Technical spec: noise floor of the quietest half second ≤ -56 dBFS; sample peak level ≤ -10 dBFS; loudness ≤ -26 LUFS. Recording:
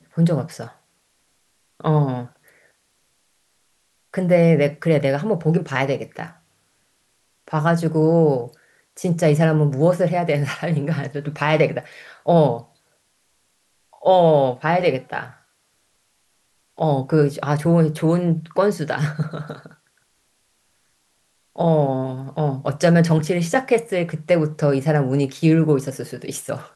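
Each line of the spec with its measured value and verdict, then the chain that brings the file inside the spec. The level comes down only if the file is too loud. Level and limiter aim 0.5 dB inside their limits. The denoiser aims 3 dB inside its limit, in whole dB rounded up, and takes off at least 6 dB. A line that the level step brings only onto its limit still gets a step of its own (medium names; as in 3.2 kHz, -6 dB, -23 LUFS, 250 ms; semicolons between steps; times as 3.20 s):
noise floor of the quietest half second -65 dBFS: pass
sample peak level -4.5 dBFS: fail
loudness -19.5 LUFS: fail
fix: trim -7 dB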